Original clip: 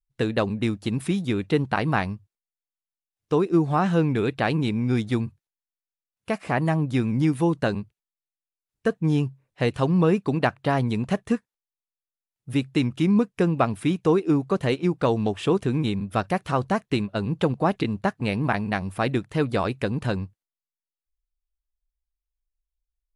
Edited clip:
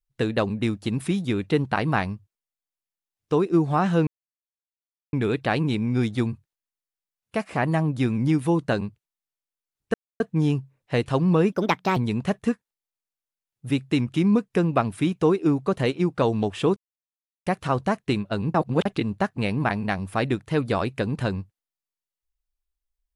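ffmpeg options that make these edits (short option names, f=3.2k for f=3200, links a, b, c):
-filter_complex "[0:a]asplit=9[a][b][c][d][e][f][g][h][i];[a]atrim=end=4.07,asetpts=PTS-STARTPTS,afade=t=out:st=4.066:d=0.004:c=hsin,apad=pad_dur=1.06[j];[b]atrim=start=4.07:end=8.88,asetpts=PTS-STARTPTS,afade=t=in:d=0.004:c=hsin,afade=t=out:st=4.806:d=0.004:c=hsin,apad=pad_dur=0.26[k];[c]atrim=start=8.88:end=10.204,asetpts=PTS-STARTPTS,afade=t=in:d=0.004:c=hsin[l];[d]atrim=start=10.2:end=10.8,asetpts=PTS-STARTPTS,asetrate=59535,aresample=44100[m];[e]atrim=start=10.796:end=15.6,asetpts=PTS-STARTPTS,afade=t=out:st=4.8:d=0.004:c=hsin[n];[f]atrim=start=15.6:end=16.3,asetpts=PTS-STARTPTS,volume=0[o];[g]atrim=start=16.3:end=17.382,asetpts=PTS-STARTPTS,afade=t=in:d=0.004:c=hsin[p];[h]atrim=start=17.378:end=17.692,asetpts=PTS-STARTPTS,areverse[q];[i]atrim=start=17.688[r];[j][k][l]concat=n=3:v=0:a=1[s];[s][m]acrossfade=d=0.004:c1=hsin:c2=hsin[t];[n][o][p]concat=n=3:v=0:a=1[u];[t][u]acrossfade=d=0.004:c1=hsin:c2=hsin[v];[v][q]acrossfade=d=0.004:c1=hsin:c2=hsin[w];[w][r]acrossfade=d=0.004:c1=hsin:c2=hsin"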